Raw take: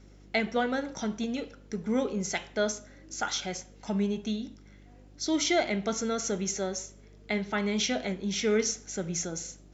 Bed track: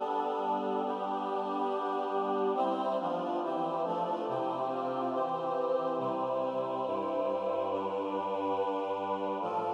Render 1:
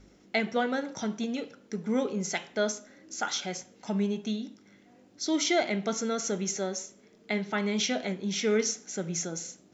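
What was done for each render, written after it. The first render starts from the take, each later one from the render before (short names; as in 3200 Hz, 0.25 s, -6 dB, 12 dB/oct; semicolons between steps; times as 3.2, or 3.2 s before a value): de-hum 50 Hz, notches 3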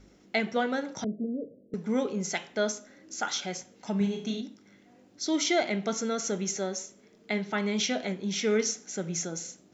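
1.04–1.74 steep low-pass 650 Hz 96 dB/oct; 3.97–4.41 flutter echo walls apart 6.1 m, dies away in 0.43 s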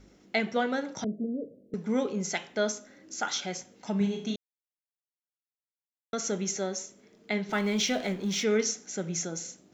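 4.36–6.13 mute; 7.49–8.44 G.711 law mismatch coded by mu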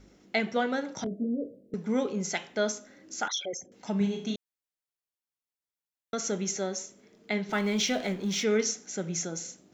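1.04–1.6 doubler 21 ms -4 dB; 3.28–3.72 formant sharpening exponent 3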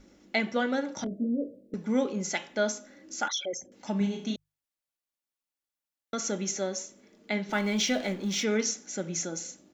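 notches 50/100/150 Hz; comb 3.5 ms, depth 34%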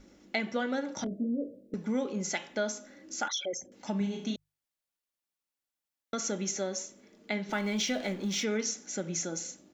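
compressor 2:1, threshold -30 dBFS, peak gain reduction 5.5 dB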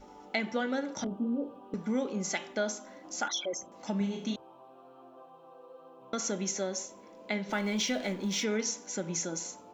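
add bed track -21 dB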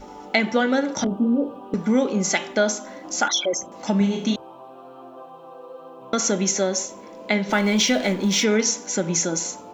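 gain +11.5 dB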